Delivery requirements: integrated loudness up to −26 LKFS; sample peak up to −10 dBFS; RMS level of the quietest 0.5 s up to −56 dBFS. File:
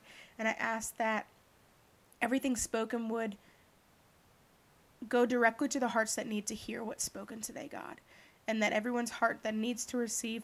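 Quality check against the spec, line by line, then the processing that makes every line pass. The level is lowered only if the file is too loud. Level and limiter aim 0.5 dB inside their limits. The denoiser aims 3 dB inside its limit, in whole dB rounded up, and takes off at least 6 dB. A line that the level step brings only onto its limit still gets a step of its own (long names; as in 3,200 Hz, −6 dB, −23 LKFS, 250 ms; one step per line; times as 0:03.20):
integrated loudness −34.5 LKFS: in spec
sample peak −13.0 dBFS: in spec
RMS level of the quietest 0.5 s −66 dBFS: in spec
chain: no processing needed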